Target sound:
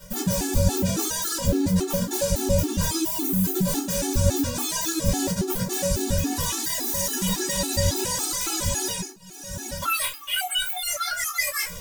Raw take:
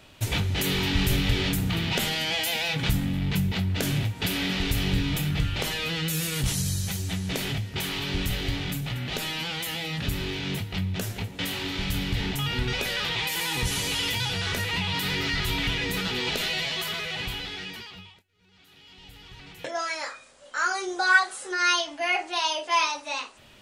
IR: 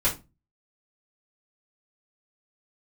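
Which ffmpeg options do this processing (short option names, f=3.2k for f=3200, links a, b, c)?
-filter_complex "[0:a]bass=f=250:g=1,treble=f=4k:g=9,asetrate=88200,aresample=44100,highshelf=f=11k:g=4.5,areverse,acompressor=threshold=-33dB:ratio=10,areverse,asoftclip=type=tanh:threshold=-28dB[a];[1:a]atrim=start_sample=2205[b];[a][b]afir=irnorm=-1:irlink=0,afftfilt=real='re*gt(sin(2*PI*3.6*pts/sr)*(1-2*mod(floor(b*sr/1024/230),2)),0)':imag='im*gt(sin(2*PI*3.6*pts/sr)*(1-2*mod(floor(b*sr/1024/230),2)),0)':win_size=1024:overlap=0.75,volume=4.5dB"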